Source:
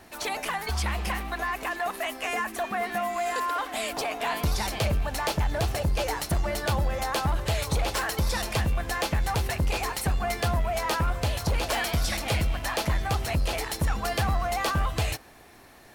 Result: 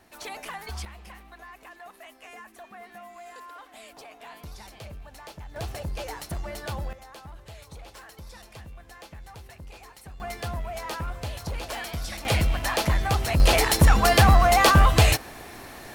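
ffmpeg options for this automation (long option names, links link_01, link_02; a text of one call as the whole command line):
ffmpeg -i in.wav -af "asetnsamples=nb_out_samples=441:pad=0,asendcmd='0.85 volume volume -16dB;5.56 volume volume -7dB;6.93 volume volume -18dB;10.2 volume volume -6.5dB;12.25 volume volume 3dB;13.4 volume volume 10dB',volume=-7dB" out.wav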